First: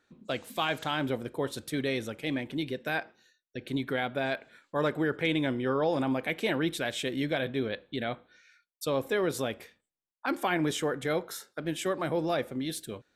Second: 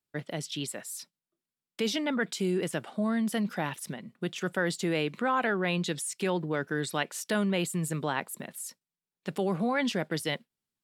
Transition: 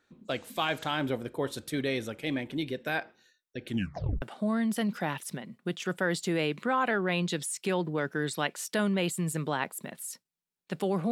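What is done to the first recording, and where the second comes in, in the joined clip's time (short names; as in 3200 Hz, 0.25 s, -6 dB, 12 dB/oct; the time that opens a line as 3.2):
first
3.67 tape stop 0.55 s
4.22 switch to second from 2.78 s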